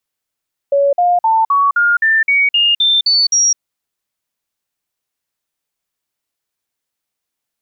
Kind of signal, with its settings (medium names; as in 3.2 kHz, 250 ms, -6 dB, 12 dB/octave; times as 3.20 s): stepped sine 562 Hz up, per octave 3, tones 11, 0.21 s, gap 0.05 s -9 dBFS